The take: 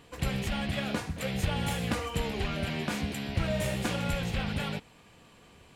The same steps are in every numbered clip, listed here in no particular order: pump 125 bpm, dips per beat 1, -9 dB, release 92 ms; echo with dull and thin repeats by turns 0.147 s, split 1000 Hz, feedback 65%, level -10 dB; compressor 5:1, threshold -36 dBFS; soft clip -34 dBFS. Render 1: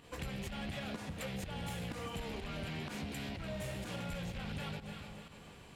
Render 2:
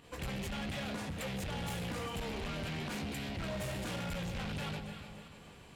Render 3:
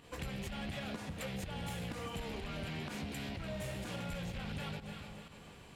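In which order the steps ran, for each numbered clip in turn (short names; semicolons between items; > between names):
echo with dull and thin repeats by turns > compressor > soft clip > pump; pump > echo with dull and thin repeats by turns > soft clip > compressor; echo with dull and thin repeats by turns > compressor > pump > soft clip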